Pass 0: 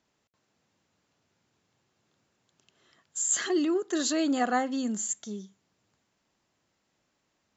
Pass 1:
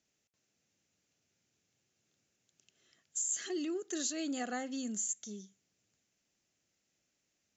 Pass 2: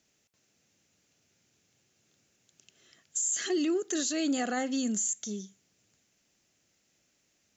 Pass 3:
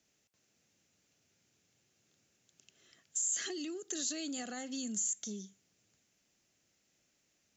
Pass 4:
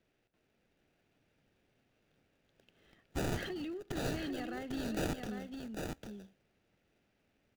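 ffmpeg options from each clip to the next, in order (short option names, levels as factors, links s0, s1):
-af "equalizer=f=1000:t=o:w=0.67:g=-10,equalizer=f=2500:t=o:w=0.67:g=4,equalizer=f=6300:t=o:w=0.67:g=10,acompressor=threshold=0.0562:ratio=4,volume=0.398"
-af "alimiter=level_in=2.11:limit=0.0631:level=0:latency=1:release=12,volume=0.473,volume=2.66"
-filter_complex "[0:a]acrossover=split=160|3000[s0][s1][s2];[s1]acompressor=threshold=0.0126:ratio=6[s3];[s0][s3][s2]amix=inputs=3:normalize=0,volume=0.668"
-filter_complex "[0:a]acrossover=split=3600[s0][s1];[s1]acrusher=samples=41:mix=1:aa=0.000001[s2];[s0][s2]amix=inputs=2:normalize=0,aecho=1:1:799:0.562"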